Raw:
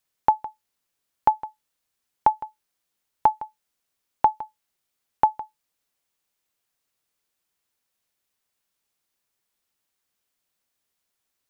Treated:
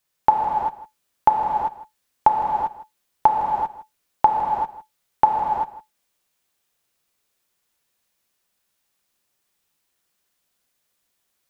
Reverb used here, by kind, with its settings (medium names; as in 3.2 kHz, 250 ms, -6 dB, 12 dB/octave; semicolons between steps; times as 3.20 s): gated-style reverb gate 420 ms flat, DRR -1 dB; trim +2.5 dB